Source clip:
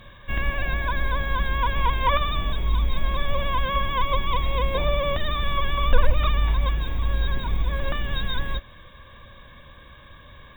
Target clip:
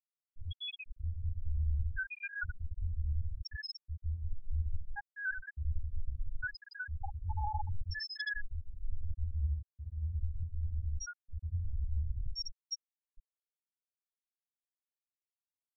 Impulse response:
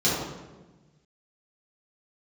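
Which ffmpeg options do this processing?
-filter_complex "[0:a]acrossover=split=750[a][b];[a]aeval=exprs='val(0)*(1-1/2+1/2*cos(2*PI*1*n/s))':c=same[c];[b]aeval=exprs='val(0)*(1-1/2-1/2*cos(2*PI*1*n/s))':c=same[d];[c][d]amix=inputs=2:normalize=0,asetrate=66075,aresample=44100,atempo=0.66742,acrossover=split=720[e][f];[f]volume=24.5dB,asoftclip=hard,volume=-24.5dB[g];[e][g]amix=inputs=2:normalize=0,equalizer=f=2.1k:t=o:w=0.9:g=-9,atempo=0.67,areverse,acompressor=threshold=-32dB:ratio=16,areverse,bandreject=f=50:t=h:w=6,bandreject=f=100:t=h:w=6,aecho=1:1:80|160|240|320:0.531|0.196|0.0727|0.0269,afftfilt=real='re*gte(hypot(re,im),0.112)':imag='im*gte(hypot(re,im),0.112)':win_size=1024:overlap=0.75,volume=2.5dB"

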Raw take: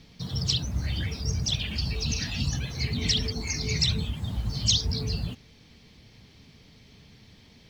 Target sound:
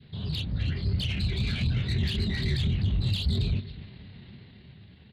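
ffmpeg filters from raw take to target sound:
-filter_complex "[0:a]dynaudnorm=f=200:g=13:m=6dB,flanger=delay=19.5:depth=8:speed=2.7,aresample=11025,aresample=44100,adynamicequalizer=threshold=0.00282:dfrequency=940:dqfactor=1.2:tfrequency=940:tqfactor=1.2:attack=5:release=100:ratio=0.375:range=2.5:mode=cutabove:tftype=bell,asplit=2[a][b];[b]adelay=35,volume=-4dB[c];[a][c]amix=inputs=2:normalize=0,aecho=1:1:396|792:0.112|0.0224,atempo=1.5,highpass=88,alimiter=limit=-20dB:level=0:latency=1:release=61,asetrate=39289,aresample=44100,atempo=1.12246,asoftclip=type=tanh:threshold=-24.5dB,lowshelf=f=340:g=8.5,volume=-1.5dB"

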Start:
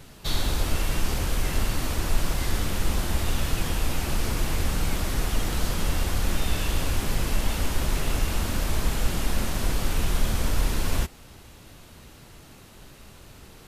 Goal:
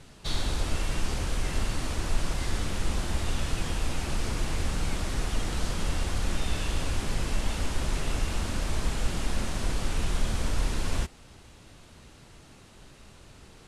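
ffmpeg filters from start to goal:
-af "lowpass=f=10k:w=0.5412,lowpass=f=10k:w=1.3066,volume=-3.5dB"

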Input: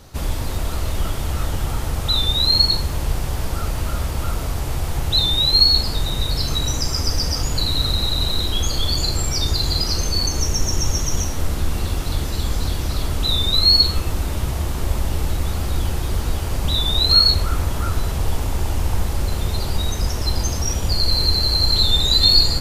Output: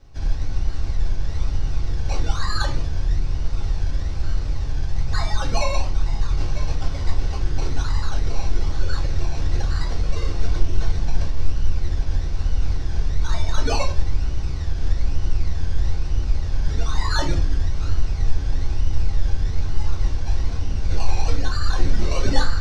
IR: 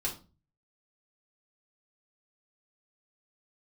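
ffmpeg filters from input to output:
-filter_complex "[0:a]lowshelf=f=190:g=8.5,acrusher=samples=21:mix=1:aa=0.000001:lfo=1:lforange=12.6:lforate=1.1,lowpass=f=5.5k:t=q:w=2.8,acrusher=bits=10:mix=0:aa=0.000001[a];[1:a]atrim=start_sample=2205[b];[a][b]afir=irnorm=-1:irlink=0,volume=-16dB"

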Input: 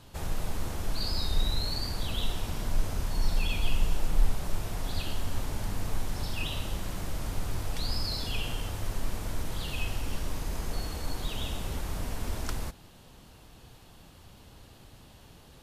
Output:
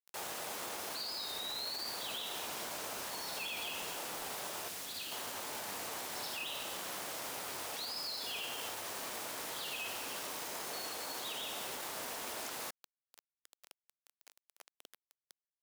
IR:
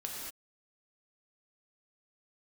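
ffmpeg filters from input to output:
-filter_complex "[0:a]acrusher=bits=6:mix=0:aa=0.000001,highpass=490,alimiter=level_in=7.5dB:limit=-24dB:level=0:latency=1:release=30,volume=-7.5dB,asettb=1/sr,asplit=3[a][b][c];[a]atrim=end=4.684[d];[b]atrim=start=4.68:end=5.12,asetpts=PTS-STARTPTS,afade=t=in:d=0.004:c=qsin,afade=t=out:st=0.436:d=0.004:c=qsin,equalizer=f=790:t=o:w=2.2:g=-8.5[e];[c]atrim=start=5.116[f];[d][e]acrossfade=d=0.004:c1=hsin:c2=qsin[g];[g][f]acrossfade=d=0.004:c1=qsin:c2=hsin"

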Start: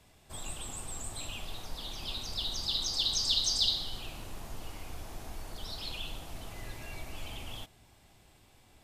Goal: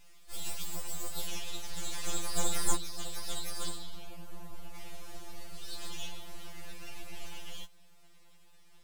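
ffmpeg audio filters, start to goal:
-af "asetnsamples=n=441:p=0,asendcmd='2.75 equalizer g -6;4.75 equalizer g 3',equalizer=f=4.6k:t=o:w=2.9:g=9.5,aeval=exprs='abs(val(0))':c=same,afftfilt=real='re*2.83*eq(mod(b,8),0)':imag='im*2.83*eq(mod(b,8),0)':win_size=2048:overlap=0.75"

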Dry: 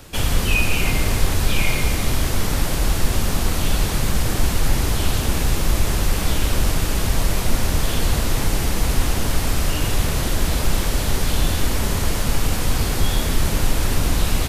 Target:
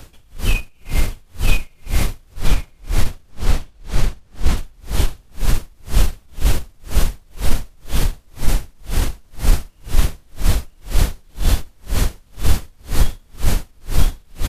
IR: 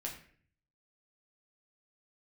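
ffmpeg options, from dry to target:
-filter_complex "[0:a]lowshelf=f=64:g=10,alimiter=limit=-6.5dB:level=0:latency=1:release=13,asettb=1/sr,asplit=3[a][b][c];[a]atrim=end=2.334[d];[b]atrim=start=2.33:end=4.57,asetpts=PTS-STARTPTS,afade=t=in:d=0.004:c=qsin,afade=t=out:st=2.236:d=0.004:c=qsin,highshelf=f=9.4k:g=-12[e];[c]atrim=start=4.566[f];[d][e]acrossfade=d=0.004:c1=hsin:c2=qsin[g];[g][f]acrossfade=d=0.004:c1=qsin:c2=hsin,aecho=1:1:970:0.708,aeval=exprs='val(0)*pow(10,-39*(0.5-0.5*cos(2*PI*2*n/s))/20)':c=same,volume=1dB"

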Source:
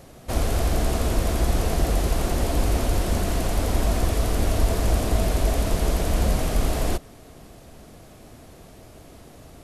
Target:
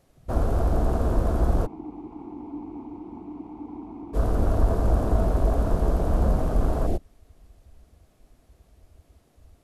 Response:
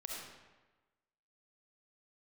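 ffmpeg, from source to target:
-filter_complex "[0:a]afwtdn=0.0355,asplit=3[a][b][c];[a]afade=t=out:st=1.65:d=0.02[d];[b]asplit=3[e][f][g];[e]bandpass=f=300:t=q:w=8,volume=0dB[h];[f]bandpass=f=870:t=q:w=8,volume=-6dB[i];[g]bandpass=f=2.24k:t=q:w=8,volume=-9dB[j];[h][i][j]amix=inputs=3:normalize=0,afade=t=in:st=1.65:d=0.02,afade=t=out:st=4.13:d=0.02[k];[c]afade=t=in:st=4.13:d=0.02[l];[d][k][l]amix=inputs=3:normalize=0"

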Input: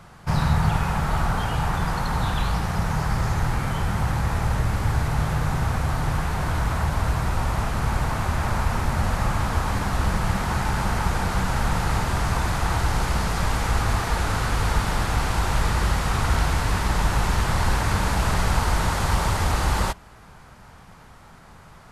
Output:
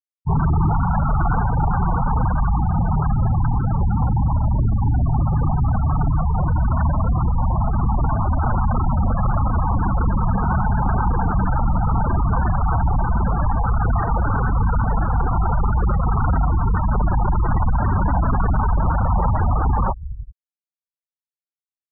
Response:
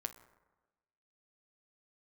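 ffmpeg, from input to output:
-filter_complex "[0:a]acrossover=split=2600[a][b];[b]acompressor=threshold=-46dB:ratio=4:attack=1:release=60[c];[a][c]amix=inputs=2:normalize=0,aecho=1:1:386:0.178,aresample=11025,asoftclip=type=hard:threshold=-22.5dB,aresample=44100,afftfilt=real='re*gte(hypot(re,im),0.0891)':imag='im*gte(hypot(re,im),0.0891)':win_size=1024:overlap=0.75,volume=8.5dB"

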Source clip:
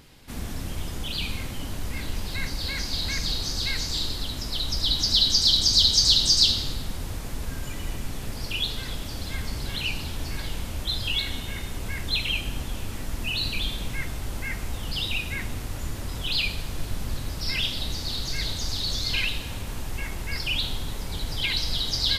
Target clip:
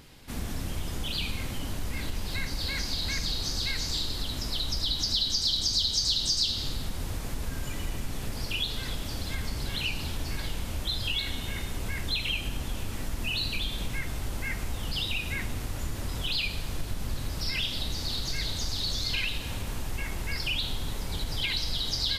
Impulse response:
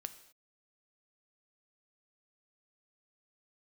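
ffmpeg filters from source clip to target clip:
-af "acompressor=threshold=-27dB:ratio=2.5"

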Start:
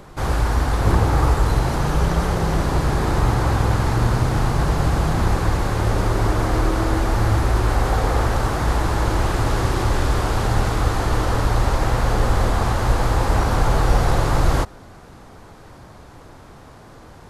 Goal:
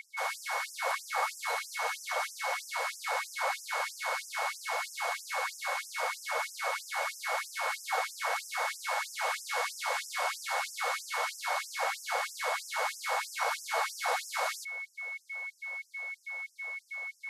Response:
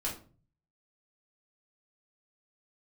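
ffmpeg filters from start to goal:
-af "aeval=exprs='val(0)+0.0282*sin(2*PI*2200*n/s)':c=same,afftfilt=real='re*gte(b*sr/1024,440*pow(5200/440,0.5+0.5*sin(2*PI*3.1*pts/sr)))':imag='im*gte(b*sr/1024,440*pow(5200/440,0.5+0.5*sin(2*PI*3.1*pts/sr)))':win_size=1024:overlap=0.75,volume=-5dB"

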